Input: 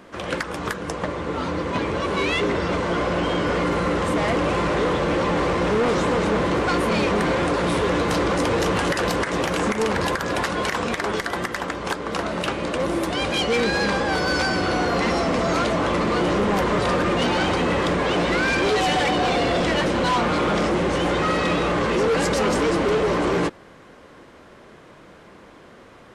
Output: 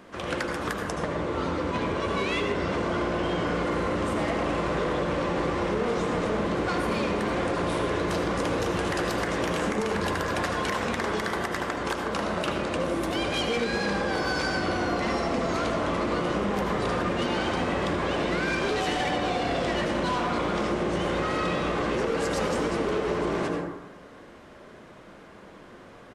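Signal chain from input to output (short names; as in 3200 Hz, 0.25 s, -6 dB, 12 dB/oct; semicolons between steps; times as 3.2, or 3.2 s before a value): downsampling 32000 Hz; on a send at -3 dB: reverb RT60 0.90 s, pre-delay 67 ms; on the sum: compressor, threshold -20 dBFS, peak gain reduction 6.5 dB; gain -3.5 dB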